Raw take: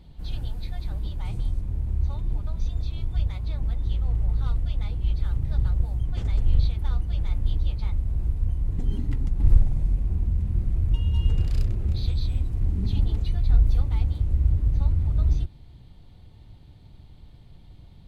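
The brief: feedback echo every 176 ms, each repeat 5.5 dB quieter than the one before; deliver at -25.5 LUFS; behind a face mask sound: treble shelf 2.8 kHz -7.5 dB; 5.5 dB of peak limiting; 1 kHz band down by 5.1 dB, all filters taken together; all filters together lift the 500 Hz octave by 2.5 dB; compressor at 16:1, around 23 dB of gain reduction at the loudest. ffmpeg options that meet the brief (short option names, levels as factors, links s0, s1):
-af "equalizer=f=500:t=o:g=5.5,equalizer=f=1000:t=o:g=-8.5,acompressor=threshold=0.0251:ratio=16,alimiter=level_in=2.24:limit=0.0631:level=0:latency=1,volume=0.447,highshelf=f=2800:g=-7.5,aecho=1:1:176|352|528|704|880|1056|1232:0.531|0.281|0.149|0.079|0.0419|0.0222|0.0118,volume=5.96"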